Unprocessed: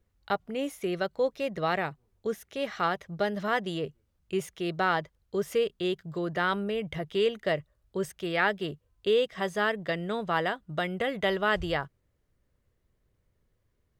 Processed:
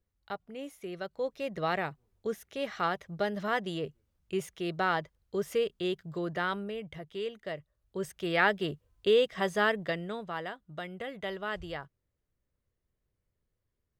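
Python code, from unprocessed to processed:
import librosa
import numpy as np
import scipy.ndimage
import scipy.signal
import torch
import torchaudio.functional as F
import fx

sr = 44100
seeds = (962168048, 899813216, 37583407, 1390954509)

y = fx.gain(x, sr, db=fx.line((0.91, -9.5), (1.6, -2.5), (6.27, -2.5), (7.07, -10.0), (7.58, -10.0), (8.33, 0.5), (9.76, 0.5), (10.34, -9.5)))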